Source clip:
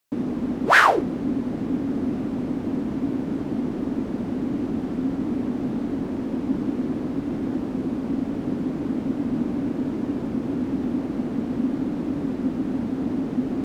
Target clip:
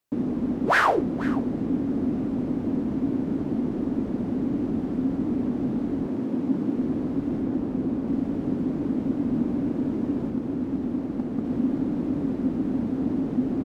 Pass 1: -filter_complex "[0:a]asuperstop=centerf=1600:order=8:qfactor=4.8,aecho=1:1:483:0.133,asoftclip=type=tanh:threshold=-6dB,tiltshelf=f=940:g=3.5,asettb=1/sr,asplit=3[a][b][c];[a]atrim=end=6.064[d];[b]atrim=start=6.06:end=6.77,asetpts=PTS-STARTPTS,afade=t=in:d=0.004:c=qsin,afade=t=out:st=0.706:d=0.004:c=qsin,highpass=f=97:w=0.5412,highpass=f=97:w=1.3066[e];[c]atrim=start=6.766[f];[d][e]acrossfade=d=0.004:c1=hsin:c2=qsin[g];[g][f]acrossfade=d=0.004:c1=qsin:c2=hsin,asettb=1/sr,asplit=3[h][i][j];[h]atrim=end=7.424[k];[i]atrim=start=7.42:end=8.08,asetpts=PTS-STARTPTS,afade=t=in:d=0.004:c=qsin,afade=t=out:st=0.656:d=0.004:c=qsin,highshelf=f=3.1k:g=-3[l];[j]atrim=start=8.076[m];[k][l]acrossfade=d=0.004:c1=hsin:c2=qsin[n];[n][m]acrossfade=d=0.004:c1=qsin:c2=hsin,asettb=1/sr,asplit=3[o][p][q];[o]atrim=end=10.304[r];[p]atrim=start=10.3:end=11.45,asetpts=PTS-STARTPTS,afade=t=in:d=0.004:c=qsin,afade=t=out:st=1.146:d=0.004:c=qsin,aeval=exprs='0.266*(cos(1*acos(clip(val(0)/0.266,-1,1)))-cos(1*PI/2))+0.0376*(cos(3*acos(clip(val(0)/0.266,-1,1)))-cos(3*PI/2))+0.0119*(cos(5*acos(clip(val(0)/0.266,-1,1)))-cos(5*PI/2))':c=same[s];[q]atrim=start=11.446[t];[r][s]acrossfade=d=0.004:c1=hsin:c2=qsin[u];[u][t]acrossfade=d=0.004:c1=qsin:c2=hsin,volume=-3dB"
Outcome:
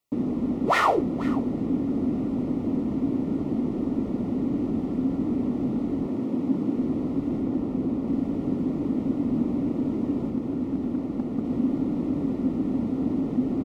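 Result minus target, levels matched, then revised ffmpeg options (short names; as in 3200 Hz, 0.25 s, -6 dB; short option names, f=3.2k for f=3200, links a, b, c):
2000 Hz band -5.0 dB
-filter_complex "[0:a]aecho=1:1:483:0.133,asoftclip=type=tanh:threshold=-6dB,tiltshelf=f=940:g=3.5,asettb=1/sr,asplit=3[a][b][c];[a]atrim=end=6.064[d];[b]atrim=start=6.06:end=6.77,asetpts=PTS-STARTPTS,afade=t=in:d=0.004:c=qsin,afade=t=out:st=0.706:d=0.004:c=qsin,highpass=f=97:w=0.5412,highpass=f=97:w=1.3066[e];[c]atrim=start=6.766[f];[d][e]acrossfade=d=0.004:c1=hsin:c2=qsin[g];[g][f]acrossfade=d=0.004:c1=qsin:c2=hsin,asettb=1/sr,asplit=3[h][i][j];[h]atrim=end=7.424[k];[i]atrim=start=7.42:end=8.08,asetpts=PTS-STARTPTS,afade=t=in:d=0.004:c=qsin,afade=t=out:st=0.656:d=0.004:c=qsin,highshelf=f=3.1k:g=-3[l];[j]atrim=start=8.076[m];[k][l]acrossfade=d=0.004:c1=hsin:c2=qsin[n];[n][m]acrossfade=d=0.004:c1=qsin:c2=hsin,asettb=1/sr,asplit=3[o][p][q];[o]atrim=end=10.304[r];[p]atrim=start=10.3:end=11.45,asetpts=PTS-STARTPTS,afade=t=in:d=0.004:c=qsin,afade=t=out:st=1.146:d=0.004:c=qsin,aeval=exprs='0.266*(cos(1*acos(clip(val(0)/0.266,-1,1)))-cos(1*PI/2))+0.0376*(cos(3*acos(clip(val(0)/0.266,-1,1)))-cos(3*PI/2))+0.0119*(cos(5*acos(clip(val(0)/0.266,-1,1)))-cos(5*PI/2))':c=same[s];[q]atrim=start=11.446[t];[r][s]acrossfade=d=0.004:c1=hsin:c2=qsin[u];[u][t]acrossfade=d=0.004:c1=qsin:c2=hsin,volume=-3dB"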